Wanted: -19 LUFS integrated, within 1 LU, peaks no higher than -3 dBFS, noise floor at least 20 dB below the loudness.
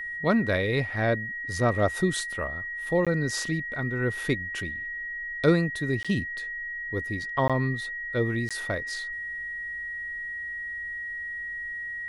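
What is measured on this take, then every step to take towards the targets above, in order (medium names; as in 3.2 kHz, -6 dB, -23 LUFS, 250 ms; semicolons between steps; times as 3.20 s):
dropouts 4; longest dropout 16 ms; steady tone 1.9 kHz; tone level -32 dBFS; loudness -28.5 LUFS; peak level -8.0 dBFS; loudness target -19.0 LUFS
-> interpolate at 3.05/6.03/7.48/8.49 s, 16 ms; band-stop 1.9 kHz, Q 30; trim +9.5 dB; peak limiter -3 dBFS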